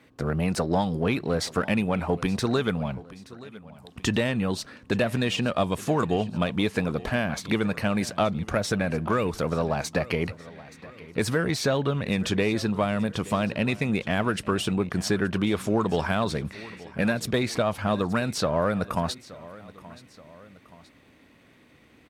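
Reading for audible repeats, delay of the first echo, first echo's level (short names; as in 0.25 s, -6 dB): 2, 0.875 s, -19.0 dB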